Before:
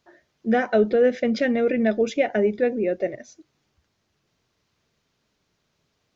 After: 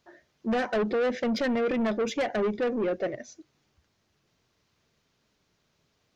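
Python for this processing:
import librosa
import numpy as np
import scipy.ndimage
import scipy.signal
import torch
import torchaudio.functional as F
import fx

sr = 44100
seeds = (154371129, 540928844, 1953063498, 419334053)

y = 10.0 ** (-23.0 / 20.0) * np.tanh(x / 10.0 ** (-23.0 / 20.0))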